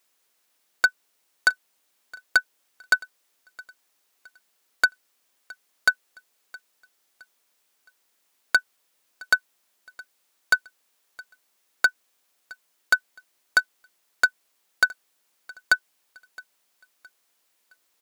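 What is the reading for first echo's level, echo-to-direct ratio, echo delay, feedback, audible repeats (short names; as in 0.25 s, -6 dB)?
-23.0 dB, -22.5 dB, 0.666 s, 38%, 2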